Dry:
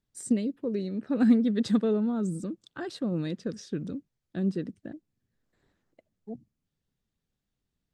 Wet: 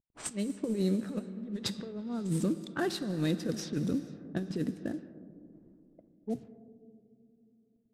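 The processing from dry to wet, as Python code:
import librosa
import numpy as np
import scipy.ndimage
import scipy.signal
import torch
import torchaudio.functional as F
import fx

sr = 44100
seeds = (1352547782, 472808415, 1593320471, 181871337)

y = fx.cvsd(x, sr, bps=64000)
y = fx.over_compress(y, sr, threshold_db=-32.0, ratio=-0.5)
y = fx.rev_plate(y, sr, seeds[0], rt60_s=4.0, hf_ratio=0.8, predelay_ms=0, drr_db=11.0)
y = fx.env_lowpass(y, sr, base_hz=360.0, full_db=-30.0)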